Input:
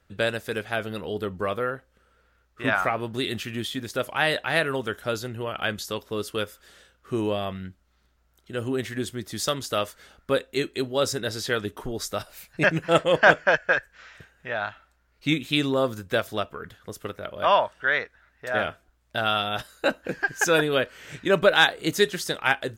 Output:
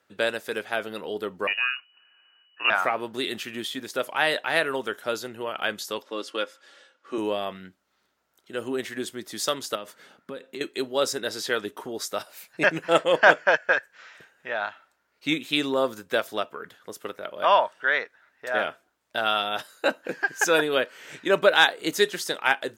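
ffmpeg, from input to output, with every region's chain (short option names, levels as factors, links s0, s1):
-filter_complex "[0:a]asettb=1/sr,asplit=3[s0][s1][s2];[s0]atrim=end=1.474[s3];[s1]atrim=start=1.47:end=2.7,asetpts=PTS-STARTPTS,afade=t=in:d=0.004:c=qsin,afade=t=out:st=1.226:d=0.004:c=qsin,highpass=44,lowshelf=f=230:g=7,lowpass=f=2600:t=q:w=0.5098,lowpass=f=2600:t=q:w=0.6013,lowpass=f=2600:t=q:w=0.9,lowpass=f=2600:t=q:w=2.563,afreqshift=-3000[s4];[s2]atrim=start=2.696[s5];[s3][s4]acrossfade=d=0.004:c1=hsin:c2=qsin[s6];[s6][s5]acrossfade=d=0.004:c1=qsin:c2=hsin,asettb=1/sr,asplit=3[s7][s8][s9];[s7]atrim=end=6.024[s10];[s8]atrim=start=6.02:end=7.18,asetpts=PTS-STARTPTS,afade=t=in:d=0.004:c=qsin,afade=t=out:st=1.156:d=0.004:c=qsin,highpass=270,lowpass=6100,aecho=1:1:3.6:0.46,atrim=end_sample=51156[s11];[s9]atrim=start=7.176[s12];[s10][s11]acrossfade=d=0.004:c1=hsin:c2=qsin[s13];[s13][s12]acrossfade=d=0.004:c1=qsin:c2=hsin,asettb=1/sr,asplit=3[s14][s15][s16];[s14]atrim=end=9.754[s17];[s15]atrim=start=9.75:end=10.61,asetpts=PTS-STARTPTS,afade=t=in:d=0.004:c=qsin,afade=t=out:st=0.856:d=0.004:c=qsin,highpass=180,bass=f=250:g=15,treble=f=4000:g=-4,acompressor=threshold=0.0282:ratio=8:attack=3.2:release=140:knee=1:detection=peak[s18];[s16]atrim=start=10.606[s19];[s17][s18]acrossfade=d=0.004:c1=hsin:c2=qsin[s20];[s20][s19]acrossfade=d=0.004:c1=qsin:c2=hsin,highpass=270,equalizer=f=920:w=7.8:g=3"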